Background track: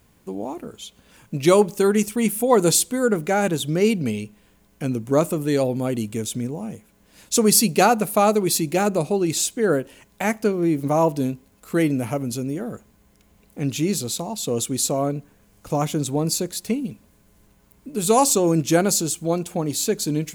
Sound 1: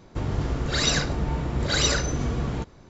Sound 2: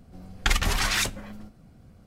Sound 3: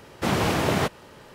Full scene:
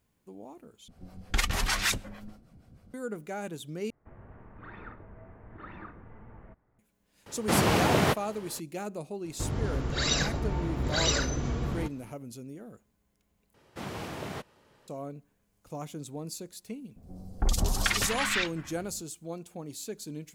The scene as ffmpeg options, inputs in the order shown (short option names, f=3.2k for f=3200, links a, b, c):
-filter_complex "[2:a]asplit=2[a][b];[1:a]asplit=2[c][d];[3:a]asplit=2[e][f];[0:a]volume=-16.5dB[g];[a]acrossover=split=480[h][i];[h]aeval=exprs='val(0)*(1-0.7/2+0.7/2*cos(2*PI*6.5*n/s))':c=same[j];[i]aeval=exprs='val(0)*(1-0.7/2-0.7/2*cos(2*PI*6.5*n/s))':c=same[k];[j][k]amix=inputs=2:normalize=0[l];[c]highpass=f=170:t=q:w=0.5412,highpass=f=170:t=q:w=1.307,lowpass=f=2.3k:t=q:w=0.5176,lowpass=f=2.3k:t=q:w=0.7071,lowpass=f=2.3k:t=q:w=1.932,afreqshift=-250[m];[b]acrossover=split=920|4200[n][o][p];[p]adelay=70[q];[o]adelay=440[r];[n][r][q]amix=inputs=3:normalize=0[s];[g]asplit=4[t][u][v][w];[t]atrim=end=0.884[x];[l]atrim=end=2.06,asetpts=PTS-STARTPTS,volume=-0.5dB[y];[u]atrim=start=2.936:end=3.904[z];[m]atrim=end=2.89,asetpts=PTS-STARTPTS,volume=-17dB[aa];[v]atrim=start=6.786:end=13.544[ab];[f]atrim=end=1.34,asetpts=PTS-STARTPTS,volume=-15dB[ac];[w]atrim=start=14.876[ad];[e]atrim=end=1.34,asetpts=PTS-STARTPTS,volume=-1dB,afade=t=in:d=0.004:c=hsin,afade=t=out:st=1.336:d=0.004:c=hsin,adelay=7260[ae];[d]atrim=end=2.89,asetpts=PTS-STARTPTS,volume=-4.5dB,afade=t=in:d=0.004:c=hsin,afade=t=out:st=2.886:d=0.004:c=hsin,adelay=9240[af];[s]atrim=end=2.06,asetpts=PTS-STARTPTS,volume=-0.5dB,afade=t=in:d=0.004:c=hsin,afade=t=out:st=2.056:d=0.004:c=hsin,adelay=16960[ag];[x][y]acrossfade=d=0.004:c1=hsin:c2=hsin[ah];[ah][z]acrossfade=d=0.004:c1=hsin:c2=hsin[ai];[ai][aa]acrossfade=d=0.004:c1=hsin:c2=hsin[aj];[aj][ab]acrossfade=d=0.004:c1=hsin:c2=hsin[ak];[ak][ac]acrossfade=d=0.004:c1=hsin:c2=hsin[al];[al][ad]acrossfade=d=0.004:c1=hsin:c2=hsin[am];[am][ae][af][ag]amix=inputs=4:normalize=0"